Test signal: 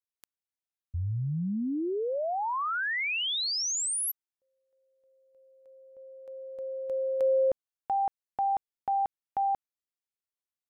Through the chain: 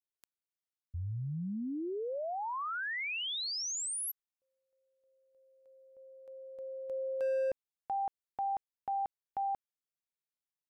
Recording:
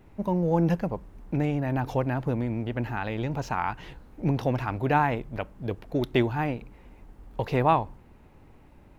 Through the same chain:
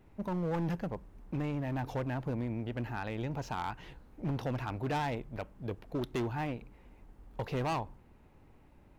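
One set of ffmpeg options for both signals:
ffmpeg -i in.wav -af "asoftclip=type=hard:threshold=-22.5dB,volume=-6.5dB" out.wav

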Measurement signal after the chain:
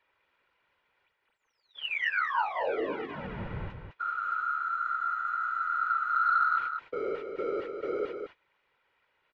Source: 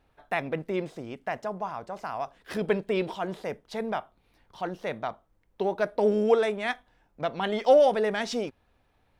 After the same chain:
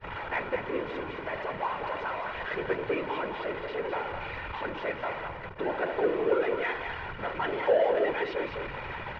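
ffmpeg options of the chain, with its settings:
ffmpeg -i in.wav -af "aeval=exprs='val(0)+0.5*0.0668*sgn(val(0))':channel_layout=same,lowpass=frequency=2500:width=0.5412,lowpass=frequency=2500:width=1.3066,lowshelf=frequency=460:gain=-10.5,agate=range=-26dB:threshold=-37dB:ratio=16:detection=peak,aecho=1:1:2.1:0.71,afftfilt=real='hypot(re,im)*cos(2*PI*random(0))':imag='hypot(re,im)*sin(2*PI*random(1))':win_size=512:overlap=0.75,asoftclip=type=tanh:threshold=-15.5dB,aecho=1:1:209:0.473,volume=1.5dB" out.wav

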